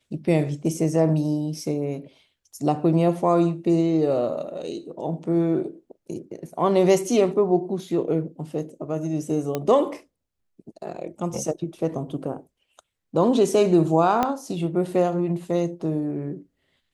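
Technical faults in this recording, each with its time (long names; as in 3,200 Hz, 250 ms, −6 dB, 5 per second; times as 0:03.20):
0:09.55: click −12 dBFS
0:14.23: click −9 dBFS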